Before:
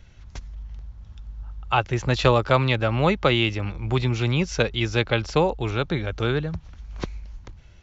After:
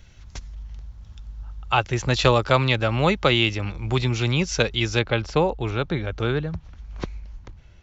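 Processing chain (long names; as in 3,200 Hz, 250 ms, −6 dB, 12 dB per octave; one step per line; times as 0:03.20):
high-shelf EQ 3,800 Hz +7.5 dB, from 0:04.99 −4 dB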